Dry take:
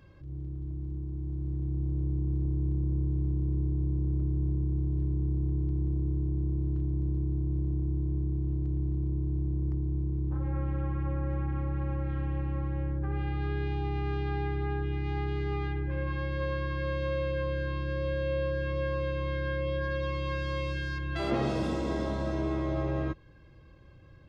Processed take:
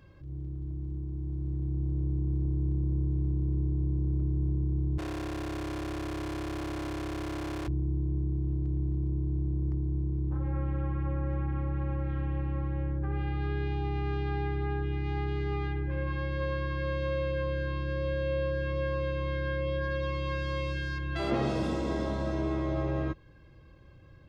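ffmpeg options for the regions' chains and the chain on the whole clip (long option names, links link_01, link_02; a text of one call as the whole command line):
ffmpeg -i in.wav -filter_complex "[0:a]asettb=1/sr,asplit=3[link_01][link_02][link_03];[link_01]atrim=end=4.984[link_04];[link_02]atrim=start=4.98:end=7.68,asetpts=PTS-STARTPTS,afade=type=in:duration=0.004:curve=qsin,afade=type=out:start_time=2.696:duration=0.004:curve=qsin,aecho=1:1:2.8:0.73,atrim=end_sample=119070,asplit=2[link_05][link_06];[link_06]highpass=frequency=720:poles=1,volume=42dB,asoftclip=type=tanh:threshold=-19.5dB[link_07];[link_05][link_07]amix=inputs=2:normalize=0,lowpass=frequency=2700:poles=1,volume=-6dB,asoftclip=type=hard:threshold=-34.5dB[link_08];[link_03]atrim=start=7.676[link_09];[link_04][link_08]acrossfade=duration=0.004:curve1=hsin:curve2=qsin[link_10];[link_10][link_09]acrossfade=duration=0.004:curve1=qsin:curve2=hsin" out.wav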